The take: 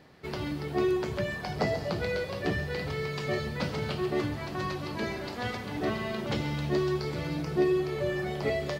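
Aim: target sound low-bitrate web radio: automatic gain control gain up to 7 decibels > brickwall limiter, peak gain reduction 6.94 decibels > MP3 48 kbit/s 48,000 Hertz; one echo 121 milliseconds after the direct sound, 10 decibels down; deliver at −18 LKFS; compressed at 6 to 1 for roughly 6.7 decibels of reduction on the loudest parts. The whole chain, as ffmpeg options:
ffmpeg -i in.wav -af "acompressor=threshold=-29dB:ratio=6,aecho=1:1:121:0.316,dynaudnorm=maxgain=7dB,alimiter=level_in=2.5dB:limit=-24dB:level=0:latency=1,volume=-2.5dB,volume=18dB" -ar 48000 -c:a libmp3lame -b:a 48k out.mp3

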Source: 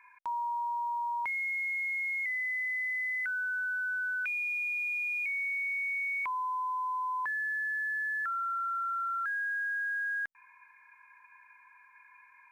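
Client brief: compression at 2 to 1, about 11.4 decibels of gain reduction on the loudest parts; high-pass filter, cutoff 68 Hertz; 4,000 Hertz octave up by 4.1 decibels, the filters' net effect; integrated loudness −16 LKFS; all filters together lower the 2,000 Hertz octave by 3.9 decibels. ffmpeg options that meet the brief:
ffmpeg -i in.wav -af "highpass=68,equalizer=frequency=2000:width_type=o:gain=-6.5,equalizer=frequency=4000:width_type=o:gain=7,acompressor=threshold=-56dB:ratio=2,volume=30dB" out.wav

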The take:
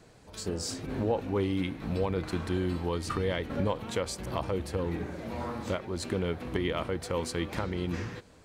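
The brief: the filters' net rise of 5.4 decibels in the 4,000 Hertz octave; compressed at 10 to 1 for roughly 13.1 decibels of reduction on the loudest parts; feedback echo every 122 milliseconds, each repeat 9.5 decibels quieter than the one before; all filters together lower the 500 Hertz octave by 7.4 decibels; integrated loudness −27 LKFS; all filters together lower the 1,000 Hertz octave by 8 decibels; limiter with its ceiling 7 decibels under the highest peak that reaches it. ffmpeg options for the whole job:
ffmpeg -i in.wav -af "equalizer=frequency=500:width_type=o:gain=-7.5,equalizer=frequency=1000:width_type=o:gain=-8.5,equalizer=frequency=4000:width_type=o:gain=7.5,acompressor=threshold=-41dB:ratio=10,alimiter=level_in=11.5dB:limit=-24dB:level=0:latency=1,volume=-11.5dB,aecho=1:1:122|244|366|488:0.335|0.111|0.0365|0.012,volume=19dB" out.wav

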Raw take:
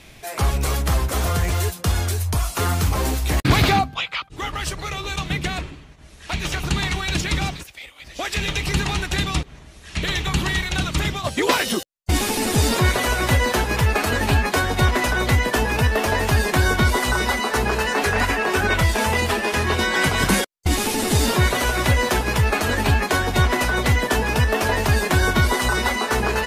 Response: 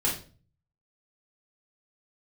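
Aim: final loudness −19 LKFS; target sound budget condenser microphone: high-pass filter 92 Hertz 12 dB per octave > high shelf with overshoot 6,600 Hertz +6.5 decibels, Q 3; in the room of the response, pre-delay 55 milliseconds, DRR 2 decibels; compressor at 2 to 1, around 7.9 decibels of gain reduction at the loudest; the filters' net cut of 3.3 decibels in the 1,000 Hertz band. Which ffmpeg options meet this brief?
-filter_complex "[0:a]equalizer=frequency=1000:width_type=o:gain=-4,acompressor=threshold=-27dB:ratio=2,asplit=2[link_01][link_02];[1:a]atrim=start_sample=2205,adelay=55[link_03];[link_02][link_03]afir=irnorm=-1:irlink=0,volume=-11dB[link_04];[link_01][link_04]amix=inputs=2:normalize=0,highpass=92,highshelf=frequency=6600:width_type=q:width=3:gain=6.5,volume=4.5dB"

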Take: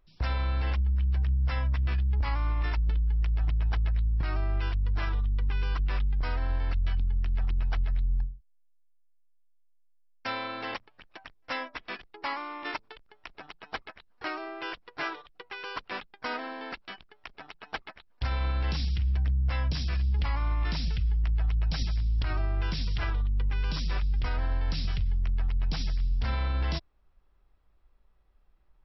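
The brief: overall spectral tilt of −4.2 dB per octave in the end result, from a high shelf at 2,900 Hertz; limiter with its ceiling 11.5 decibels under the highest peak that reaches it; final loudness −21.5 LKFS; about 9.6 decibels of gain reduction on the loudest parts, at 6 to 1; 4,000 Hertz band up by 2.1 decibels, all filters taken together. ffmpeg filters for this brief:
ffmpeg -i in.wav -af "highshelf=frequency=2900:gain=-6,equalizer=frequency=4000:width_type=o:gain=7.5,acompressor=threshold=-34dB:ratio=6,volume=20dB,alimiter=limit=-12dB:level=0:latency=1" out.wav

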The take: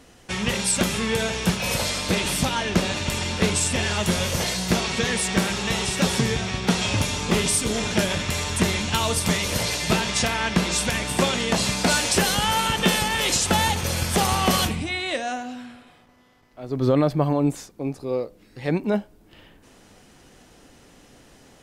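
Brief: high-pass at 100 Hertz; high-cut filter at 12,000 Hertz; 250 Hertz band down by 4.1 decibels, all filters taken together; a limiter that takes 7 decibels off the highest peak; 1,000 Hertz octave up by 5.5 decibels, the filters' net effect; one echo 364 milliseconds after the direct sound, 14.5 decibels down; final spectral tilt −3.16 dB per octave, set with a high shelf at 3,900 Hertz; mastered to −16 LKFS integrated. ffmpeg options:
ffmpeg -i in.wav -af "highpass=100,lowpass=12000,equalizer=frequency=250:width_type=o:gain=-6,equalizer=frequency=1000:width_type=o:gain=7.5,highshelf=frequency=3900:gain=-4.5,alimiter=limit=-11.5dB:level=0:latency=1,aecho=1:1:364:0.188,volume=7.5dB" out.wav

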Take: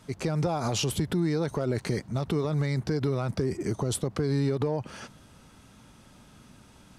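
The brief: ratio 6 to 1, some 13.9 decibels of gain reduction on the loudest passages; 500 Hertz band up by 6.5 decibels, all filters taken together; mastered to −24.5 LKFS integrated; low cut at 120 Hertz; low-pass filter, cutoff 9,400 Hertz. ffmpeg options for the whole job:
ffmpeg -i in.wav -af "highpass=120,lowpass=9400,equalizer=frequency=500:width_type=o:gain=8,acompressor=threshold=-35dB:ratio=6,volume=14dB" out.wav

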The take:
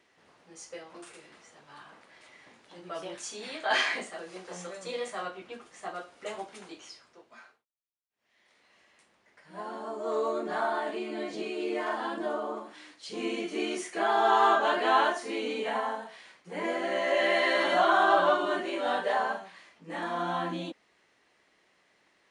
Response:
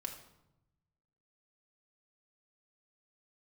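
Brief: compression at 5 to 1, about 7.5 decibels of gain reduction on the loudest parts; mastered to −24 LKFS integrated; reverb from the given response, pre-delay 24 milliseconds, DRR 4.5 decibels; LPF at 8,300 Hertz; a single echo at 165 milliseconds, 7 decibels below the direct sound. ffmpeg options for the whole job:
-filter_complex "[0:a]lowpass=8300,acompressor=threshold=-27dB:ratio=5,aecho=1:1:165:0.447,asplit=2[link_01][link_02];[1:a]atrim=start_sample=2205,adelay=24[link_03];[link_02][link_03]afir=irnorm=-1:irlink=0,volume=-3dB[link_04];[link_01][link_04]amix=inputs=2:normalize=0,volume=7dB"

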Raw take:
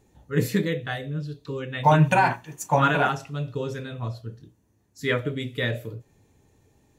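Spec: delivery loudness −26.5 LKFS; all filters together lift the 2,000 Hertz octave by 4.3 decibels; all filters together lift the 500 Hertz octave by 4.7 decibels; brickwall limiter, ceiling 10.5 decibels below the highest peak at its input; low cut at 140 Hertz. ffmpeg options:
ffmpeg -i in.wav -af "highpass=140,equalizer=frequency=500:width_type=o:gain=5.5,equalizer=frequency=2000:width_type=o:gain=5.5,volume=0.5dB,alimiter=limit=-13.5dB:level=0:latency=1" out.wav

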